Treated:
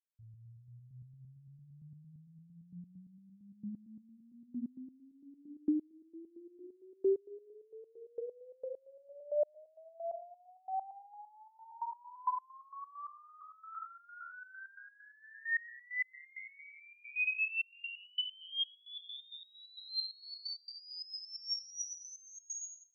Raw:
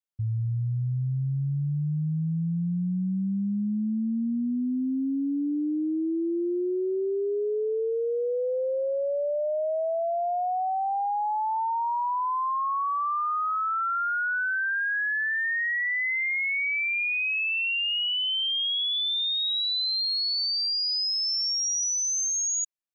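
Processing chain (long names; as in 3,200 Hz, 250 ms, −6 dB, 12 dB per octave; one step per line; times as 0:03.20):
echo with a time of its own for lows and highs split 380 Hz, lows 165 ms, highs 90 ms, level −11.5 dB
step-sequenced resonator 8.8 Hz 230–1,400 Hz
level +1 dB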